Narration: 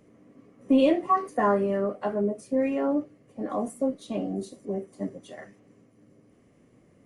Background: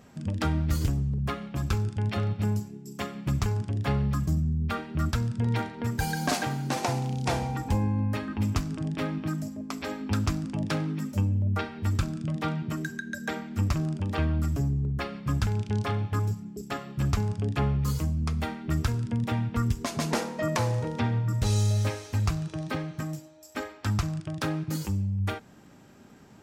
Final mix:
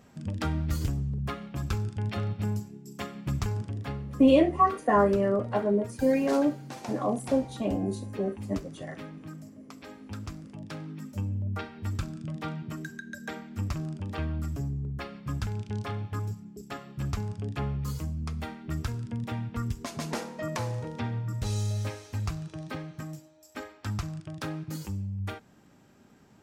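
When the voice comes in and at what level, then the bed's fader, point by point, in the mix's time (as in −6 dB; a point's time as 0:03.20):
3.50 s, +1.0 dB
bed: 0:03.63 −3 dB
0:04.07 −12 dB
0:10.61 −12 dB
0:11.31 −5.5 dB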